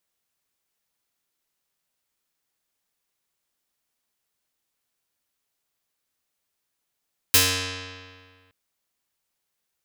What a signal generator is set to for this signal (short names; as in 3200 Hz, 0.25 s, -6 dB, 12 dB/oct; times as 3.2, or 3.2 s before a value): plucked string F#2, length 1.17 s, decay 1.85 s, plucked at 0.49, medium